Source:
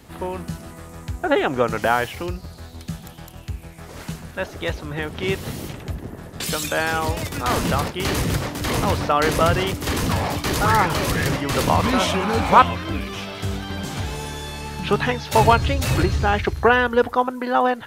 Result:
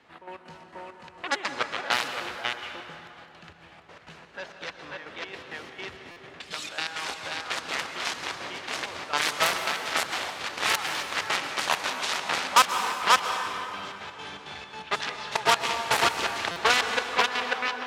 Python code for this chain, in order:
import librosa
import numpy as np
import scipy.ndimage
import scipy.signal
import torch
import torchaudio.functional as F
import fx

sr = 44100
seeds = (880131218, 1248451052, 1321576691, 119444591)

p1 = x + fx.echo_single(x, sr, ms=539, db=-3.0, dry=0)
p2 = fx.step_gate(p1, sr, bpm=166, pattern='xx.x.xx.', floor_db=-12.0, edge_ms=4.5)
p3 = np.clip(p2, -10.0 ** (-11.0 / 20.0), 10.0 ** (-11.0 / 20.0))
p4 = p2 + (p3 * librosa.db_to_amplitude(-4.0))
p5 = fx.cheby_harmonics(p4, sr, harmonics=(7,), levels_db=(-11,), full_scale_db=1.0)
p6 = fx.highpass(p5, sr, hz=1300.0, slope=6)
p7 = fx.env_lowpass(p6, sr, base_hz=2600.0, full_db=-13.5)
p8 = fx.rev_plate(p7, sr, seeds[0], rt60_s=2.9, hf_ratio=0.6, predelay_ms=110, drr_db=6.5)
p9 = fx.buffer_glitch(p8, sr, at_s=(6.11, 16.51), block=256, repeats=8)
y = p9 * librosa.db_to_amplitude(-6.0)